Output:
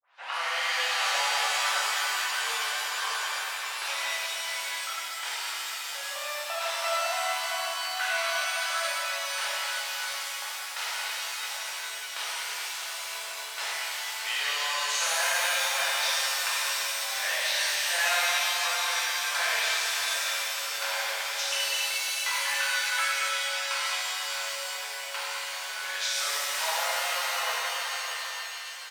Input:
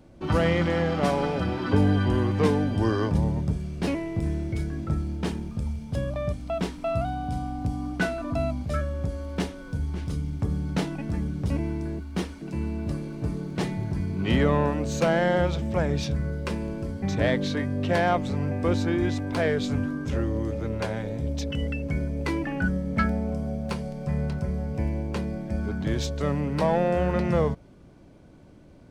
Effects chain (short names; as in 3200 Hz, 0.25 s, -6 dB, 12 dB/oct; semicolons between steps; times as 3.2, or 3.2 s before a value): tape start at the beginning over 0.32 s; compressor 6:1, threshold -32 dBFS, peak gain reduction 15 dB; Bessel high-pass 1300 Hz, order 6; echo 0.614 s -9.5 dB; shimmer reverb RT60 3.3 s, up +7 st, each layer -2 dB, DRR -9 dB; gain +7.5 dB